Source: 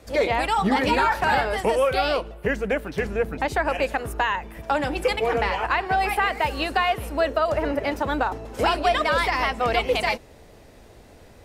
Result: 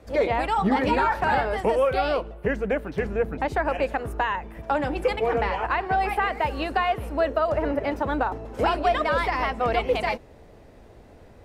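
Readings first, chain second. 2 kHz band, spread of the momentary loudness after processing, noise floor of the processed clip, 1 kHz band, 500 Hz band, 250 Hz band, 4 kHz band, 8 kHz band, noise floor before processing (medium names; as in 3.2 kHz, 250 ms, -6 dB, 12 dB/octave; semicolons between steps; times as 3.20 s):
-3.5 dB, 5 LU, -49 dBFS, -1.0 dB, -0.5 dB, 0.0 dB, -6.5 dB, no reading, -49 dBFS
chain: treble shelf 2.6 kHz -11 dB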